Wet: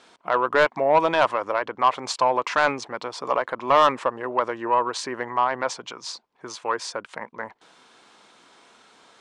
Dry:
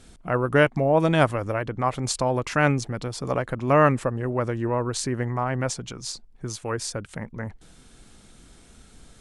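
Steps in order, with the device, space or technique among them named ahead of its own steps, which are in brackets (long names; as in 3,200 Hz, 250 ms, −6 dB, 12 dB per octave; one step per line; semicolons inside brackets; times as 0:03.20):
intercom (band-pass filter 490–4,600 Hz; parametric band 1,000 Hz +9 dB 0.39 octaves; soft clipping −13 dBFS, distortion −11 dB)
level +4 dB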